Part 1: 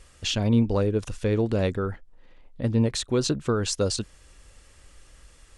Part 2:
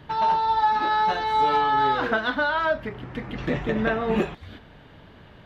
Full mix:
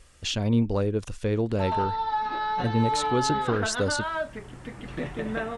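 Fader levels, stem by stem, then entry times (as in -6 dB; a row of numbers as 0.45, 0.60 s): -2.0, -6.5 dB; 0.00, 1.50 s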